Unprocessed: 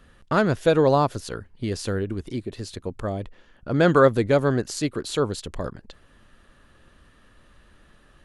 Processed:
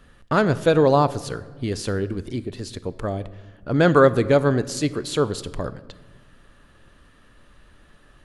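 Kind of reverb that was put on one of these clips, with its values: simulated room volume 1100 m³, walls mixed, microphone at 0.33 m; trim +1.5 dB

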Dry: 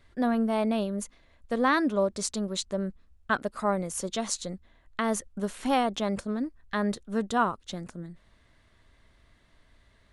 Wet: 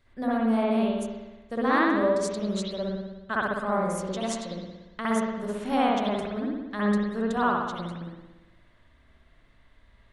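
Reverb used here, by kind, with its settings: spring tank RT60 1.1 s, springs 58 ms, chirp 45 ms, DRR -7 dB; trim -6 dB

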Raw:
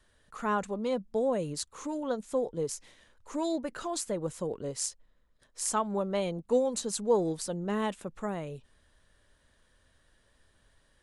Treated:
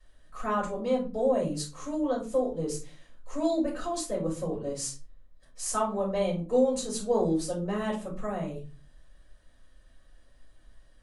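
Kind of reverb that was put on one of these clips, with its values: simulated room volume 150 m³, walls furnished, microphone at 5.5 m; trim -10 dB

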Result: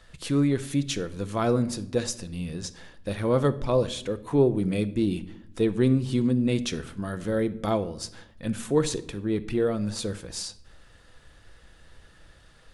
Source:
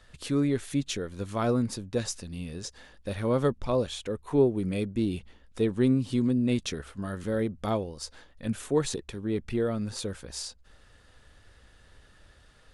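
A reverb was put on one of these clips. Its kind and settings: simulated room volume 1900 m³, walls furnished, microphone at 0.72 m; trim +2.5 dB

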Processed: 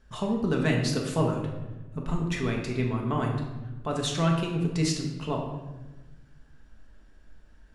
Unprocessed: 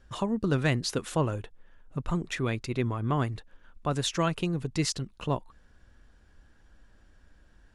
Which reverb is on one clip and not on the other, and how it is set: simulated room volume 620 m³, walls mixed, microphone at 1.5 m; trim -2.5 dB

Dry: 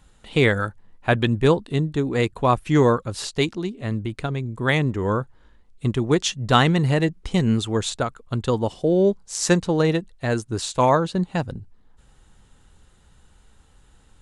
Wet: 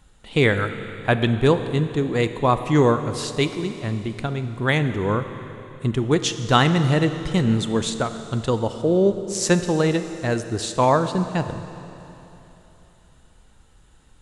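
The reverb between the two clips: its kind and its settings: Schroeder reverb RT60 3.3 s, combs from 27 ms, DRR 9.5 dB

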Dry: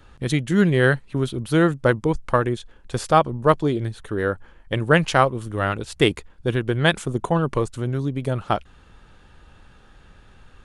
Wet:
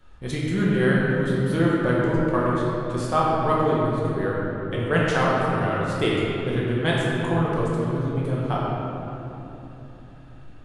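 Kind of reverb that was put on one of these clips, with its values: simulated room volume 190 m³, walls hard, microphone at 1 m; trim -9.5 dB

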